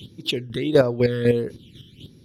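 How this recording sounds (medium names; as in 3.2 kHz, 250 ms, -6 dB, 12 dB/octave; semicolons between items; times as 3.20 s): phasing stages 12, 1.5 Hz, lowest notch 740–3100 Hz; chopped level 4 Hz, depth 60%, duty 25%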